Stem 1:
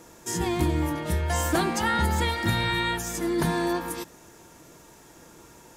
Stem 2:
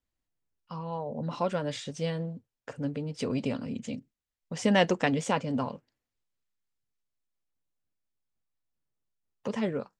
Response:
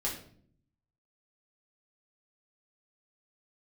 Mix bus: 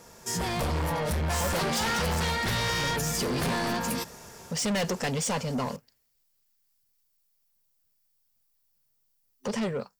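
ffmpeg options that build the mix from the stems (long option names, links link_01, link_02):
-filter_complex "[0:a]aeval=exprs='0.0794*(abs(mod(val(0)/0.0794+3,4)-2)-1)':channel_layout=same,volume=-1dB[link_01];[1:a]aemphasis=mode=production:type=50fm,volume=0.5dB[link_02];[link_01][link_02]amix=inputs=2:normalize=0,superequalizer=6b=0.282:14b=1.58,dynaudnorm=framelen=140:gausssize=7:maxgain=6dB,asoftclip=type=tanh:threshold=-25dB"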